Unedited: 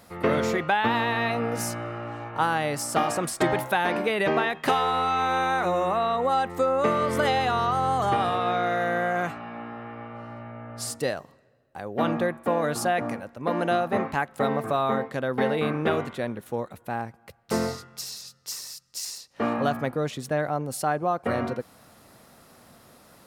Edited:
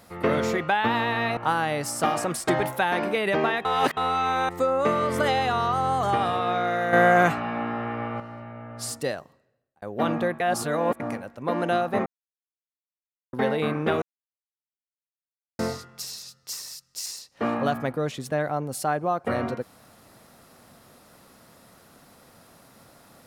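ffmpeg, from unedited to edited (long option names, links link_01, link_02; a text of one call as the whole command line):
ffmpeg -i in.wav -filter_complex "[0:a]asplit=14[link_01][link_02][link_03][link_04][link_05][link_06][link_07][link_08][link_09][link_10][link_11][link_12][link_13][link_14];[link_01]atrim=end=1.372[link_15];[link_02]atrim=start=2.298:end=4.582[link_16];[link_03]atrim=start=4.578:end=4.902,asetpts=PTS-STARTPTS,areverse[link_17];[link_04]atrim=start=4.898:end=5.422[link_18];[link_05]atrim=start=6.478:end=8.922[link_19];[link_06]atrim=start=8.918:end=10.192,asetpts=PTS-STARTPTS,volume=8.5dB[link_20];[link_07]atrim=start=10.188:end=11.81,asetpts=PTS-STARTPTS,afade=type=out:start_time=0.782:duration=0.84[link_21];[link_08]atrim=start=11.81:end=12.392,asetpts=PTS-STARTPTS,afade=type=in:duration=0.004:curve=hsin[link_22];[link_09]atrim=start=12.388:end=12.992,asetpts=PTS-STARTPTS,areverse[link_23];[link_10]atrim=start=12.988:end=14.05,asetpts=PTS-STARTPTS,afade=type=out:start_time=1.058:duration=0.004:curve=hsin[link_24];[link_11]atrim=start=14.05:end=15.32,asetpts=PTS-STARTPTS,volume=0[link_25];[link_12]atrim=start=15.32:end=16.01,asetpts=PTS-STARTPTS,afade=type=in:duration=0.004:curve=hsin,afade=type=out:start_time=0.686:duration=0.004:curve=hsin[link_26];[link_13]atrim=start=16.01:end=17.58,asetpts=PTS-STARTPTS,volume=0[link_27];[link_14]atrim=start=17.58,asetpts=PTS-STARTPTS,afade=type=in:duration=0.004:curve=hsin[link_28];[link_15][link_16]acrossfade=duration=0.004:curve1=hsin:curve2=hsin[link_29];[link_29][link_17]acrossfade=duration=0.004:curve1=hsin:curve2=hsin[link_30];[link_30][link_18]acrossfade=duration=0.004:curve1=hsin:curve2=hsin[link_31];[link_31][link_19]acrossfade=duration=0.004:curve1=hsin:curve2=hsin[link_32];[link_32][link_20]acrossfade=duration=0.004:curve1=hsin:curve2=hsin[link_33];[link_21][link_22]concat=n=2:v=0:a=1[link_34];[link_33][link_34]acrossfade=duration=0.004:curve1=hsin:curve2=hsin[link_35];[link_35][link_23]acrossfade=duration=0.004:curve1=hsin:curve2=hsin[link_36];[link_24][link_25][link_26][link_27][link_28]concat=n=5:v=0:a=1[link_37];[link_36][link_37]acrossfade=duration=0.004:curve1=hsin:curve2=hsin" out.wav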